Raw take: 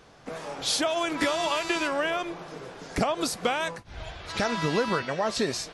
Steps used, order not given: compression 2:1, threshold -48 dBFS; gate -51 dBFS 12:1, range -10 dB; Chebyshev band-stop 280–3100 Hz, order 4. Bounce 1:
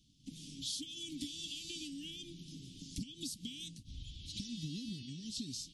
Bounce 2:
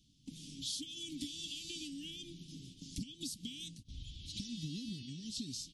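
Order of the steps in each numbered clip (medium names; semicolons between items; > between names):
gate > Chebyshev band-stop > compression; Chebyshev band-stop > compression > gate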